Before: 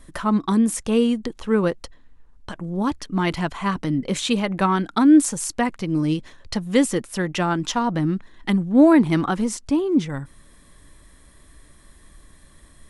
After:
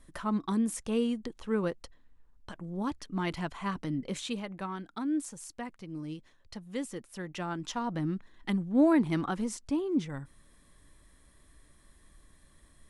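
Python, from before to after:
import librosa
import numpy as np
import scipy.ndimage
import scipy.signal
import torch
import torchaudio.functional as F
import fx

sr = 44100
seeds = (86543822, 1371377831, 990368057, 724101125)

y = fx.gain(x, sr, db=fx.line((4.02, -10.5), (4.66, -18.0), (6.82, -18.0), (8.07, -10.0)))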